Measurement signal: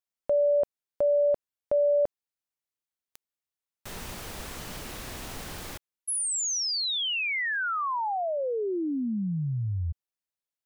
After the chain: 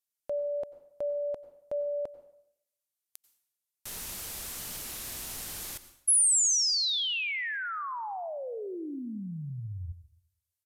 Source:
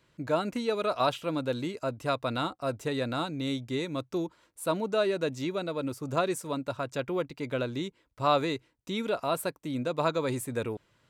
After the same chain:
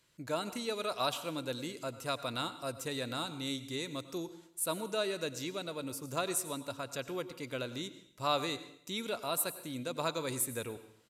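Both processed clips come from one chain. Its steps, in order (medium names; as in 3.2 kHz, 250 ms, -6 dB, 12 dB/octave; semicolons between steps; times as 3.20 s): pre-emphasis filter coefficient 0.8; plate-style reverb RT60 0.71 s, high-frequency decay 0.9×, pre-delay 80 ms, DRR 13 dB; resampled via 32 kHz; trim +5.5 dB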